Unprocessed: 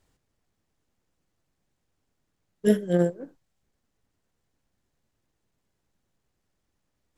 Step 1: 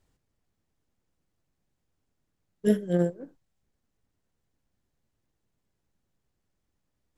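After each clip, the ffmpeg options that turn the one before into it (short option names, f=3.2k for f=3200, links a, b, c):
-af "lowshelf=f=320:g=4,volume=-4.5dB"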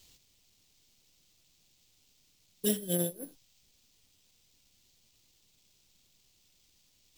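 -af "acompressor=threshold=-41dB:ratio=2,acrusher=samples=4:mix=1:aa=0.000001,aexciter=amount=7.7:drive=3.9:freq=2.4k,volume=3.5dB"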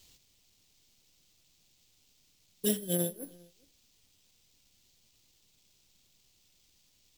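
-filter_complex "[0:a]asplit=2[a][b];[b]adelay=402.3,volume=-25dB,highshelf=f=4k:g=-9.05[c];[a][c]amix=inputs=2:normalize=0"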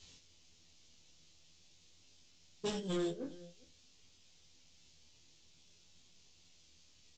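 -filter_complex "[0:a]flanger=delay=22.5:depth=3.5:speed=0.49,aresample=16000,asoftclip=type=tanh:threshold=-38.5dB,aresample=44100,asplit=2[a][b];[b]adelay=12,volume=-4.5dB[c];[a][c]amix=inputs=2:normalize=0,volume=5dB"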